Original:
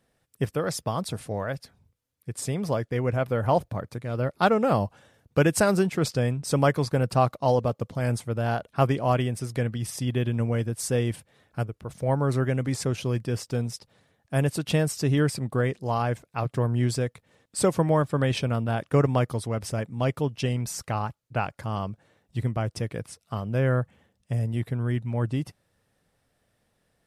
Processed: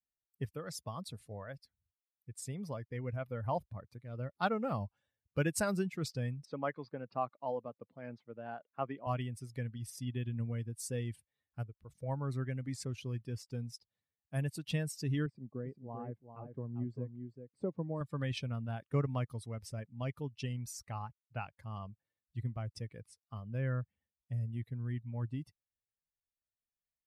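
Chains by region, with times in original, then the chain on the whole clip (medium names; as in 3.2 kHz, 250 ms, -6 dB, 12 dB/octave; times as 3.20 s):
6.45–9.07 s: high-pass 220 Hz + distance through air 260 m
15.26–18.01 s: band-pass filter 300 Hz, Q 0.69 + delay 394 ms -5.5 dB
whole clip: expander on every frequency bin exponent 1.5; dynamic bell 460 Hz, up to -4 dB, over -35 dBFS, Q 0.93; trim -8 dB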